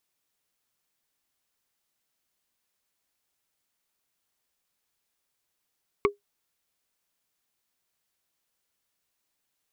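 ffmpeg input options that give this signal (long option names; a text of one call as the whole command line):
ffmpeg -f lavfi -i "aevalsrc='0.178*pow(10,-3*t/0.14)*sin(2*PI*407*t)+0.158*pow(10,-3*t/0.041)*sin(2*PI*1122.1*t)+0.141*pow(10,-3*t/0.018)*sin(2*PI*2199.4*t)':duration=0.45:sample_rate=44100" out.wav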